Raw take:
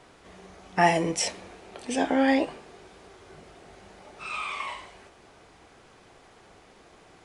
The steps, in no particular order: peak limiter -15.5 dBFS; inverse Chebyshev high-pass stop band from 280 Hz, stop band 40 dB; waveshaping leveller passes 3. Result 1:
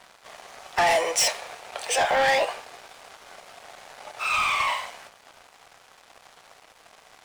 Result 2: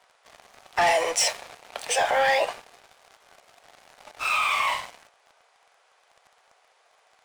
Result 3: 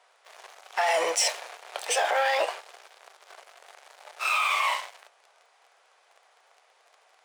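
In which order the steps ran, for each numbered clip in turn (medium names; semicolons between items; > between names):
inverse Chebyshev high-pass > peak limiter > waveshaping leveller; inverse Chebyshev high-pass > waveshaping leveller > peak limiter; waveshaping leveller > inverse Chebyshev high-pass > peak limiter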